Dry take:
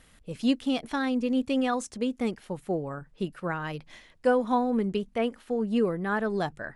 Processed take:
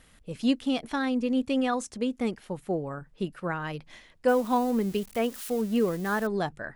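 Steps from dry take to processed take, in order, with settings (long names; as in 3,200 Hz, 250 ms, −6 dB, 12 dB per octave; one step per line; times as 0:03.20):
0:04.28–0:06.27: spike at every zero crossing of −31.5 dBFS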